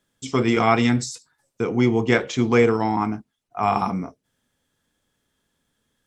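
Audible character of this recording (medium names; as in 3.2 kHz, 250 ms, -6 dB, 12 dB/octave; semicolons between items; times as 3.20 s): noise floor -77 dBFS; spectral tilt -5.5 dB/octave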